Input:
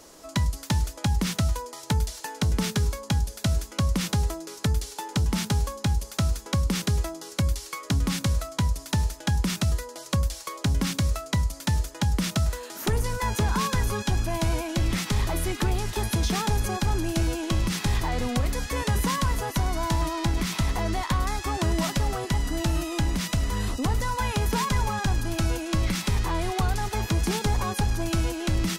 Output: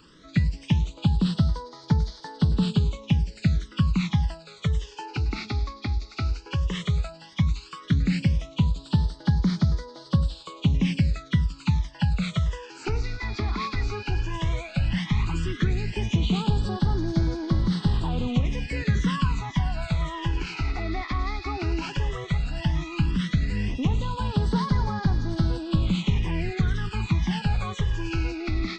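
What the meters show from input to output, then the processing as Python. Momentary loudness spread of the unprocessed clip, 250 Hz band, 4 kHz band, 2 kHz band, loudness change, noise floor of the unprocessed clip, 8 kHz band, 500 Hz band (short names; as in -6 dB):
3 LU, +2.5 dB, -3.5 dB, -2.0 dB, +0.5 dB, -44 dBFS, -15.0 dB, -4.0 dB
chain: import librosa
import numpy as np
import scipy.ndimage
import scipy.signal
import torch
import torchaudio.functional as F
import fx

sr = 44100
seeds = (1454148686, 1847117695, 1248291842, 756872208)

y = fx.freq_compress(x, sr, knee_hz=2400.0, ratio=1.5)
y = fx.phaser_stages(y, sr, stages=12, low_hz=160.0, high_hz=2700.0, hz=0.13, feedback_pct=5)
y = fx.graphic_eq_15(y, sr, hz=(160, 630, 2500, 6300), db=(8, -5, 5, -9))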